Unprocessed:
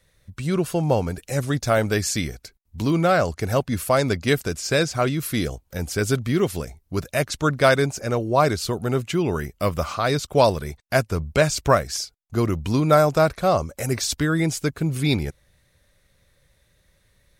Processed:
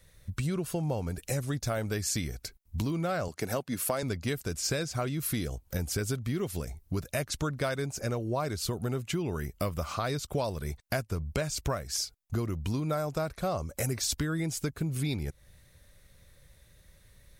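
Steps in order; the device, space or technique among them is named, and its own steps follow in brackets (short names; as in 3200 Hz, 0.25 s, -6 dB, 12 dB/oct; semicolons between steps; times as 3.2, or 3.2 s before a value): 3.28–4.03 HPF 190 Hz 12 dB/oct; ASMR close-microphone chain (low shelf 160 Hz +6 dB; compressor 6:1, threshold -29 dBFS, peak gain reduction 17.5 dB; high shelf 7800 Hz +6.5 dB)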